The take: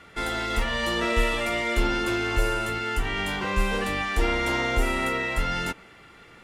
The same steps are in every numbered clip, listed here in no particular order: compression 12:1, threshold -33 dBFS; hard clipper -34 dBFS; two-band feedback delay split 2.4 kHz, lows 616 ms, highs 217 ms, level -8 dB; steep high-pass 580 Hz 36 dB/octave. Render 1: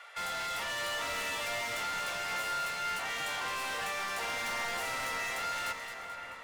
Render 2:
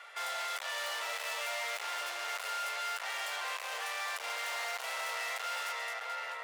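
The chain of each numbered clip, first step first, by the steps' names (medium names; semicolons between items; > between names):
steep high-pass > hard clipper > compression > two-band feedback delay; two-band feedback delay > hard clipper > compression > steep high-pass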